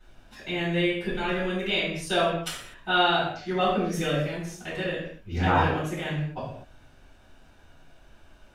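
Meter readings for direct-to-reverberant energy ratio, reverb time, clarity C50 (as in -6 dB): -12.5 dB, no single decay rate, 1.5 dB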